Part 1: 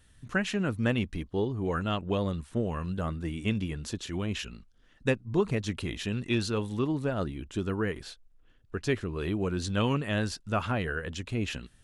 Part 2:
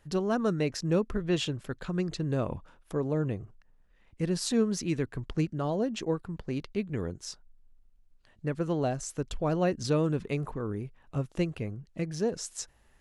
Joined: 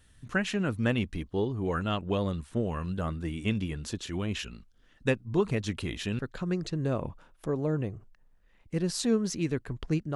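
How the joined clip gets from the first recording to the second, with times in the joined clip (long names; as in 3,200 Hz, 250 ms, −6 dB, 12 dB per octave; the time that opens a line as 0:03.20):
part 1
0:06.19: continue with part 2 from 0:01.66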